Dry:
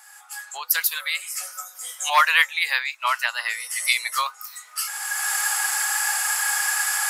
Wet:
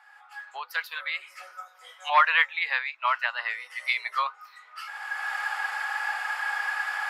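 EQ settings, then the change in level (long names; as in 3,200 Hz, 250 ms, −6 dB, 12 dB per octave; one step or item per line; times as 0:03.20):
high-frequency loss of the air 370 metres
0.0 dB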